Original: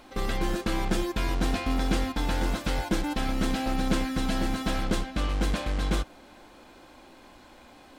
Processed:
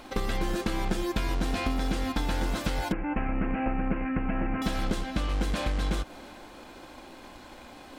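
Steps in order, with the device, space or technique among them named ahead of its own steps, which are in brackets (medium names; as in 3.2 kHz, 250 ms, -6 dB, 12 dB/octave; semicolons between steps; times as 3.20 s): drum-bus smash (transient shaper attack +7 dB, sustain +2 dB; compression 10:1, threshold -27 dBFS, peak gain reduction 12.5 dB; saturation -20 dBFS, distortion -21 dB); 2.92–4.62 s: steep low-pass 2.7 kHz 96 dB/octave; trim +4 dB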